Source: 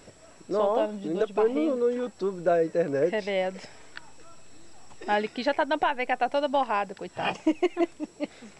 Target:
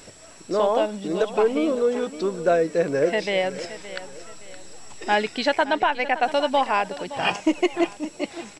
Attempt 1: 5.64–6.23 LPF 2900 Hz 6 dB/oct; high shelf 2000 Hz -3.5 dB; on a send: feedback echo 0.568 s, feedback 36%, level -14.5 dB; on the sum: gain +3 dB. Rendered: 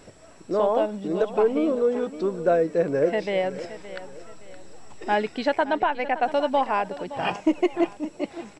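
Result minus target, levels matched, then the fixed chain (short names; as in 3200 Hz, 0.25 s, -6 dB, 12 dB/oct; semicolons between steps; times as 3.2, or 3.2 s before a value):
4000 Hz band -6.5 dB
5.64–6.23 LPF 2900 Hz 6 dB/oct; high shelf 2000 Hz +7.5 dB; on a send: feedback echo 0.568 s, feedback 36%, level -14.5 dB; on the sum: gain +3 dB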